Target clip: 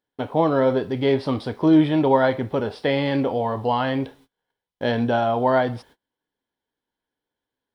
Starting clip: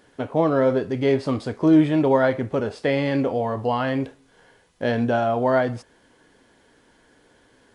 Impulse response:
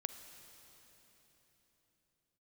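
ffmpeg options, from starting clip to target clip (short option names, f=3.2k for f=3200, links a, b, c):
-af "superequalizer=9b=1.58:13b=1.78:15b=0.251:16b=0.708,acrusher=bits=10:mix=0:aa=0.000001,agate=range=-30dB:threshold=-48dB:ratio=16:detection=peak"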